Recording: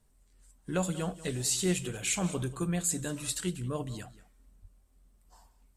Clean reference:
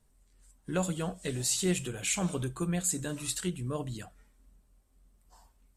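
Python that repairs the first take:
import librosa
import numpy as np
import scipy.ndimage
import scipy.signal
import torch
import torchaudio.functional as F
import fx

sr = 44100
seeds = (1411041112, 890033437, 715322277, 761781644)

y = fx.fix_deplosive(x, sr, at_s=(4.61,))
y = fx.fix_echo_inverse(y, sr, delay_ms=187, level_db=-17.5)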